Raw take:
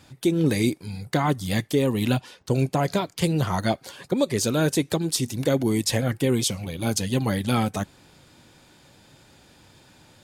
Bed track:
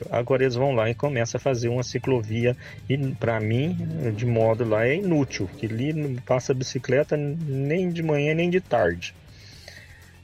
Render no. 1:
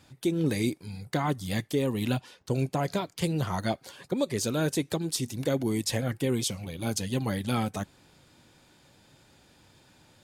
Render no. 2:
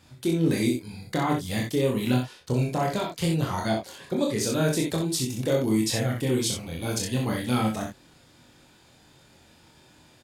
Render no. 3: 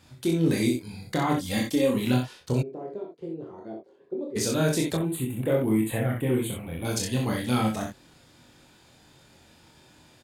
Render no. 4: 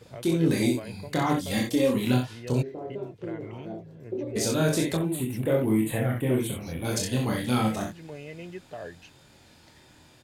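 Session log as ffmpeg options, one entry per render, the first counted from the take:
-af "volume=-5.5dB"
-filter_complex "[0:a]asplit=2[a][b];[b]adelay=24,volume=-3.5dB[c];[a][c]amix=inputs=2:normalize=0,aecho=1:1:37|64:0.473|0.531"
-filter_complex "[0:a]asettb=1/sr,asplit=3[a][b][c];[a]atrim=end=1.374[d];[b]atrim=start=1.37:end=1.96,asetpts=PTS-STARTPTS,afade=t=in:d=0.004:c=qsin,afade=t=out:st=0.586:d=0.004:c=qsin,aecho=1:1:3.7:0.65,atrim=end_sample=26019[e];[c]atrim=start=1.956[f];[d][e]acrossfade=d=0.004:c1=hsin:c2=qsin[g];[g][f]acrossfade=d=0.004:c1=qsin:c2=hsin,asplit=3[h][i][j];[h]afade=t=out:st=2.61:d=0.02[k];[i]bandpass=f=390:t=q:w=4.5,afade=t=in:st=2.61:d=0.02,afade=t=out:st=4.35:d=0.02[l];[j]afade=t=in:st=4.35:d=0.02[m];[k][l][m]amix=inputs=3:normalize=0,asettb=1/sr,asplit=3[n][o][p];[n]atrim=end=4.974[q];[o]atrim=start=4.97:end=6.85,asetpts=PTS-STARTPTS,afade=t=in:d=0.004:c=qsin,afade=t=out:st=1.876:d=0.004:c=qsin,asuperstop=centerf=5400:order=4:qfactor=0.74[r];[p]atrim=start=6.846[s];[q][r]acrossfade=d=0.004:c1=hsin:c2=qsin[t];[t][s]acrossfade=d=0.004:c1=qsin:c2=hsin"
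-filter_complex "[1:a]volume=-18.5dB[a];[0:a][a]amix=inputs=2:normalize=0"

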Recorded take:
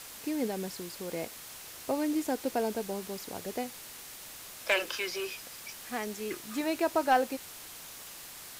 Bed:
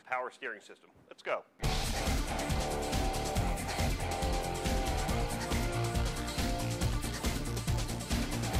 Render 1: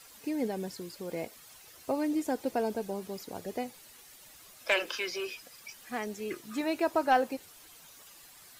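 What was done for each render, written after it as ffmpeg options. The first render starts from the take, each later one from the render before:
-af "afftdn=nr=11:nf=-47"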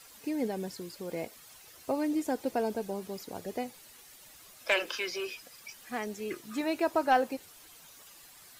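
-af anull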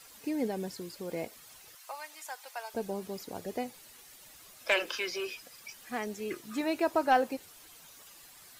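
-filter_complex "[0:a]asettb=1/sr,asplit=3[a][b][c];[a]atrim=end=1.754[d];[b]atrim=start=1.75:end=2.74,asetpts=PTS-STARTPTS,afade=t=in:d=0.004:c=qsin,afade=t=out:st=0.986:d=0.004:c=qsin,highpass=f=900:w=0.5412,highpass=f=900:w=1.3066[e];[c]atrim=start=2.736[f];[d][e]acrossfade=d=0.004:c1=hsin:c2=qsin[g];[g][f]acrossfade=d=0.004:c1=qsin:c2=hsin"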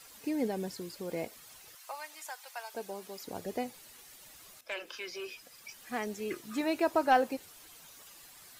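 -filter_complex "[0:a]asettb=1/sr,asplit=3[a][b][c];[a]atrim=end=2.304[d];[b]atrim=start=2.3:end=3.24,asetpts=PTS-STARTPTS,afade=t=in:d=0.004:c=qsin,afade=t=out:st=0.936:d=0.004:c=qsin,highpass=f=690:p=1[e];[c]atrim=start=3.236[f];[d][e]acrossfade=d=0.004:c1=hsin:c2=qsin[g];[g][f]acrossfade=d=0.004:c1=qsin:c2=hsin,asplit=2[h][i];[h]atrim=end=4.61,asetpts=PTS-STARTPTS,afade=t=out:st=4.606:d=0.004:c=hsin:silence=0.188365[j];[i]atrim=start=4.61,asetpts=PTS-STARTPTS,afade=t=in:d=1.36:silence=0.188365[k];[j][k]concat=n=2:v=0:a=1"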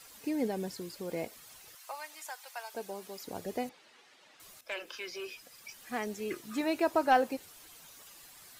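-filter_complex "[0:a]asettb=1/sr,asplit=3[a][b][c];[a]atrim=end=3.694[d];[b]atrim=start=3.69:end=4.4,asetpts=PTS-STARTPTS,afade=t=in:d=0.004:c=qsin,afade=t=out:st=0.706:d=0.004:c=qsin,highpass=270,lowpass=3.6k[e];[c]atrim=start=4.396[f];[d][e]acrossfade=d=0.004:c1=hsin:c2=qsin[g];[g][f]acrossfade=d=0.004:c1=qsin:c2=hsin"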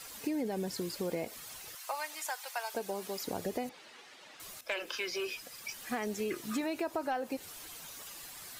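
-filter_complex "[0:a]asplit=2[a][b];[b]alimiter=level_in=4dB:limit=-24dB:level=0:latency=1:release=37,volume=-4dB,volume=0.5dB[c];[a][c]amix=inputs=2:normalize=0,acompressor=threshold=-31dB:ratio=10"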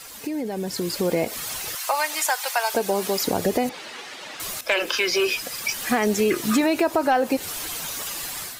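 -filter_complex "[0:a]asplit=2[a][b];[b]alimiter=level_in=6.5dB:limit=-24dB:level=0:latency=1:release=156,volume=-6.5dB,volume=1dB[c];[a][c]amix=inputs=2:normalize=0,dynaudnorm=f=600:g=3:m=10dB"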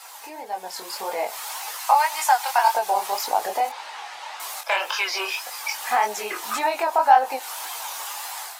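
-af "highpass=f=850:t=q:w=4.5,flanger=delay=19:depth=7.7:speed=1.8"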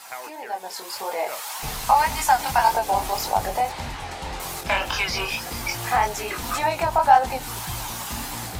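-filter_complex "[1:a]volume=-2dB[a];[0:a][a]amix=inputs=2:normalize=0"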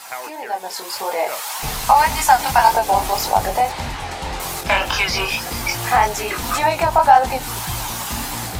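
-af "volume=5.5dB,alimiter=limit=-1dB:level=0:latency=1"

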